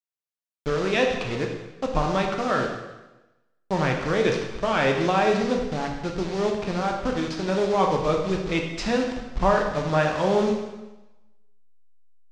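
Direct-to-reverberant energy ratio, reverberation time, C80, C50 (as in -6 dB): 1.0 dB, 1.1 s, 6.5 dB, 4.5 dB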